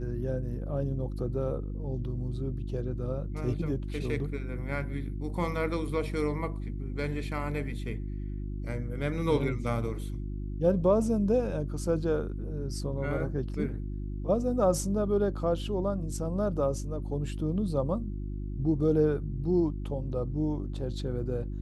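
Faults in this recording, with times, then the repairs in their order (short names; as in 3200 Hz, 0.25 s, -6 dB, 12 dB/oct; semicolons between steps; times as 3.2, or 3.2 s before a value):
hum 50 Hz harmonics 7 -35 dBFS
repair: de-hum 50 Hz, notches 7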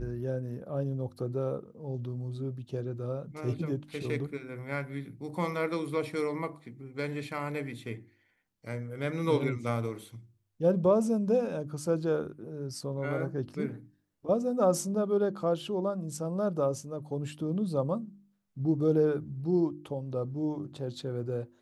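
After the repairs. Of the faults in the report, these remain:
none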